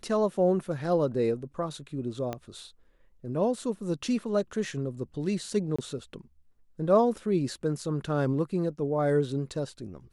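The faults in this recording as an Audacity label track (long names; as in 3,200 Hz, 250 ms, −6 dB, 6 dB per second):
2.330000	2.330000	click −19 dBFS
5.760000	5.790000	drop-out 25 ms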